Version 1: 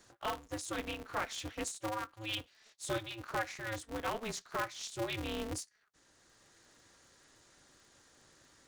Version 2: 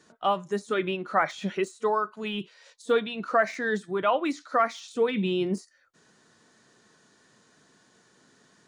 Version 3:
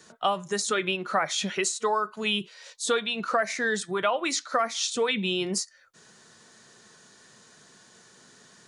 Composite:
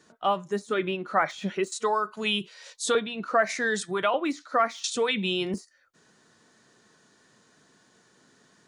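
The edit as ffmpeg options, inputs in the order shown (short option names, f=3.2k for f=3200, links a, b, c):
-filter_complex "[2:a]asplit=3[a][b][c];[1:a]asplit=4[d][e][f][g];[d]atrim=end=1.722[h];[a]atrim=start=1.718:end=2.952[i];[e]atrim=start=2.948:end=3.492[j];[b]atrim=start=3.488:end=4.142[k];[f]atrim=start=4.138:end=4.842[l];[c]atrim=start=4.838:end=5.542[m];[g]atrim=start=5.538[n];[h][i]acrossfade=d=0.004:c1=hsin:c2=hsin[o];[o][j]acrossfade=d=0.004:c1=hsin:c2=hsin[p];[p][k]acrossfade=d=0.004:c1=hsin:c2=hsin[q];[q][l]acrossfade=d=0.004:c1=hsin:c2=hsin[r];[r][m]acrossfade=d=0.004:c1=hsin:c2=hsin[s];[s][n]acrossfade=d=0.004:c1=hsin:c2=hsin"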